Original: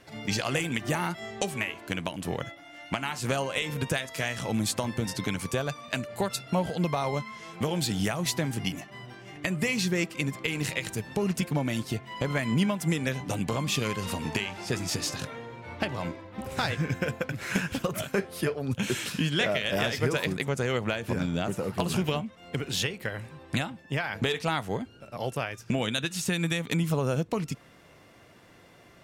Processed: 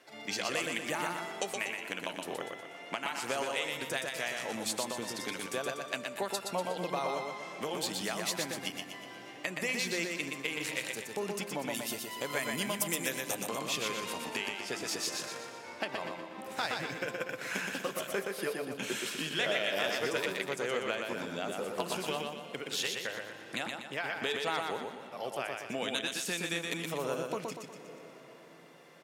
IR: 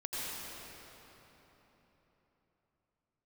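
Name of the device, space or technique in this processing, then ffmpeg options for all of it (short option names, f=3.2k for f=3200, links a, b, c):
ducked reverb: -filter_complex "[0:a]asplit=3[a][b][c];[1:a]atrim=start_sample=2205[d];[b][d]afir=irnorm=-1:irlink=0[e];[c]apad=whole_len=1280536[f];[e][f]sidechaincompress=threshold=-36dB:ratio=8:attack=6.4:release=416,volume=-12.5dB[g];[a][g]amix=inputs=2:normalize=0,highpass=350,asettb=1/sr,asplit=3[h][i][j];[h]atrim=end=11.744[k];[i]atrim=start=11.74:end=13.35,asetpts=PTS-STARTPTS,afade=t=in:d=0.004:c=qsin,afade=t=out:st=1.606:d=0.004:c=qsin,aemphasis=mode=production:type=50fm[l];[j]atrim=start=13.346[m];[k][l]acrossfade=d=0.004:c1=hsin:c2=qsin[n];[n][m]acrossfade=d=0.004:c1=qsin:c2=hsin,aecho=1:1:121|242|363|484|605|726:0.631|0.29|0.134|0.0614|0.0283|0.013,volume=-5dB"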